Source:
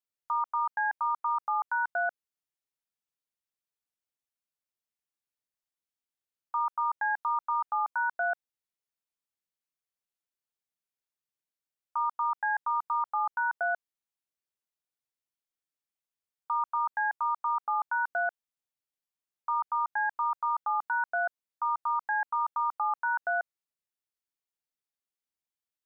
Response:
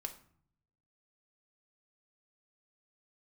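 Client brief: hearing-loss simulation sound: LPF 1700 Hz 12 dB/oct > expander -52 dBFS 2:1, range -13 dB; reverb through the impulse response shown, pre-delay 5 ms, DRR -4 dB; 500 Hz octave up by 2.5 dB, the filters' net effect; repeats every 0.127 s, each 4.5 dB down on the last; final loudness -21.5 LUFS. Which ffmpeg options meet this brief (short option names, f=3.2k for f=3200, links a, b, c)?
-filter_complex "[0:a]equalizer=f=500:t=o:g=5,aecho=1:1:127|254|381|508|635|762|889|1016|1143:0.596|0.357|0.214|0.129|0.0772|0.0463|0.0278|0.0167|0.01,asplit=2[a][b];[1:a]atrim=start_sample=2205,adelay=5[c];[b][c]afir=irnorm=-1:irlink=0,volume=6dB[d];[a][d]amix=inputs=2:normalize=0,lowpass=1.7k,agate=range=-13dB:threshold=-52dB:ratio=2,volume=1dB"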